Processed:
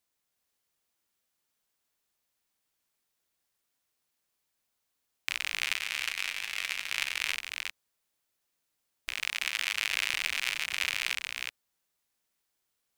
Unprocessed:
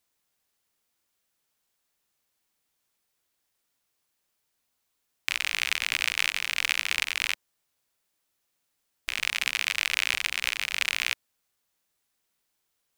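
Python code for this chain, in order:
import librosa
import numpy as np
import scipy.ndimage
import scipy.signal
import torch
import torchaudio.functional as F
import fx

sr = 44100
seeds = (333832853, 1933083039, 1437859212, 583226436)

y = fx.comb_fb(x, sr, f0_hz=93.0, decay_s=0.16, harmonics='all', damping=0.0, mix_pct=60, at=(5.76, 6.92))
y = fx.low_shelf(y, sr, hz=250.0, db=-10.5, at=(9.13, 9.7))
y = y + 10.0 ** (-4.5 / 20.0) * np.pad(y, (int(361 * sr / 1000.0), 0))[:len(y)]
y = y * librosa.db_to_amplitude(-4.5)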